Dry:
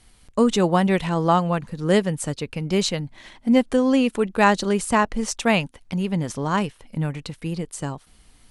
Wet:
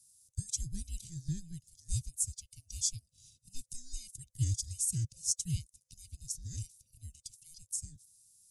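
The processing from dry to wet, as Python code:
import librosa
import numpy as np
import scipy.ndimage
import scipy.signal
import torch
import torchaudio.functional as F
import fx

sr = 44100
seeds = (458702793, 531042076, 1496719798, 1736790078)

y = fx.band_swap(x, sr, width_hz=500)
y = scipy.signal.sosfilt(scipy.signal.cheby1(3, 1.0, [120.0, 6300.0], 'bandstop', fs=sr, output='sos'), y)
y = fx.low_shelf(y, sr, hz=83.0, db=-12.0)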